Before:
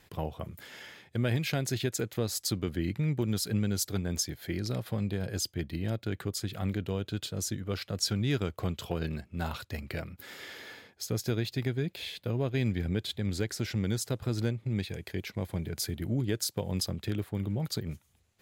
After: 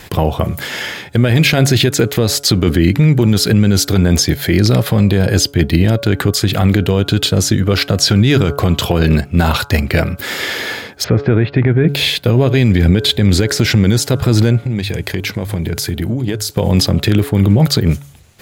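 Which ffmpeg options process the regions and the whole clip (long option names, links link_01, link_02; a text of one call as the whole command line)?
ffmpeg -i in.wav -filter_complex "[0:a]asettb=1/sr,asplit=3[link_01][link_02][link_03];[link_01]atrim=end=11.044[link_04];[link_02]atrim=start=11.04:end=11.89,asetpts=PTS-STARTPTS,afade=type=in:duration=0.004:curve=qsin,afade=type=out:start_time=0.846:duration=0.004:curve=qsin,lowpass=frequency=2200:width=0.5412,lowpass=frequency=2200:width=1.3066,acompressor=mode=upward:threshold=-40dB:ratio=2.5:attack=3.2:release=140:knee=2.83:detection=peak[link_05];[link_03]atrim=start=11.886[link_06];[link_04][link_05]acrossfade=duration=0.004:curve1=hsin:curve2=qsin[link_07];[link_07][link_06]acrossfade=duration=0.004:curve1=qsin:curve2=hsin,asettb=1/sr,asplit=3[link_08][link_09][link_10];[link_08]atrim=end=14.624[link_11];[link_09]atrim=start=14.62:end=16.5,asetpts=PTS-STARTPTS,afade=type=in:duration=0.004:curve=qsin,afade=type=out:start_time=1.876:duration=0.004:curve=qsin,bandreject=frequency=51.74:width_type=h:width=4,bandreject=frequency=103.48:width_type=h:width=4,acompressor=threshold=-40dB:ratio=4:attack=3.2:release=140:knee=1:detection=peak[link_12];[link_10]atrim=start=16.496[link_13];[link_11][link_12]acrossfade=duration=0.004:curve1=hsin:curve2=qsin[link_14];[link_14][link_13]acrossfade=duration=0.004:curve1=qsin:curve2=hsin,bandreject=frequency=141.6:width_type=h:width=4,bandreject=frequency=283.2:width_type=h:width=4,bandreject=frequency=424.8:width_type=h:width=4,bandreject=frequency=566.4:width_type=h:width=4,bandreject=frequency=708:width_type=h:width=4,bandreject=frequency=849.6:width_type=h:width=4,bandreject=frequency=991.2:width_type=h:width=4,bandreject=frequency=1132.8:width_type=h:width=4,bandreject=frequency=1274.4:width_type=h:width=4,bandreject=frequency=1416:width_type=h:width=4,bandreject=frequency=1557.6:width_type=h:width=4,acrossover=split=4300[link_15][link_16];[link_16]acompressor=threshold=-42dB:ratio=4:attack=1:release=60[link_17];[link_15][link_17]amix=inputs=2:normalize=0,alimiter=level_in=25.5dB:limit=-1dB:release=50:level=0:latency=1,volume=-1dB" out.wav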